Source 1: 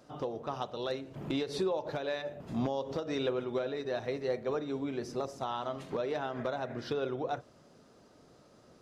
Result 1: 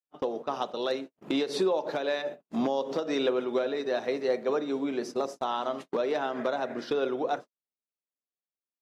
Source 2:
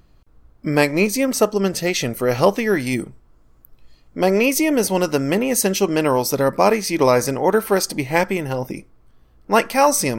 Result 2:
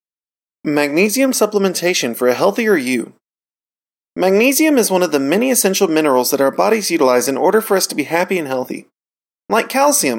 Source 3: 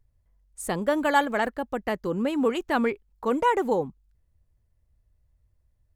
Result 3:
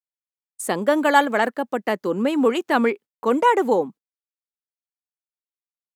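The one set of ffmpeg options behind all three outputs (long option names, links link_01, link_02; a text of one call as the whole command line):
ffmpeg -i in.wav -af "highpass=frequency=200:width=0.5412,highpass=frequency=200:width=1.3066,agate=range=-55dB:threshold=-42dB:ratio=16:detection=peak,alimiter=level_in=6.5dB:limit=-1dB:release=50:level=0:latency=1,volume=-1dB" out.wav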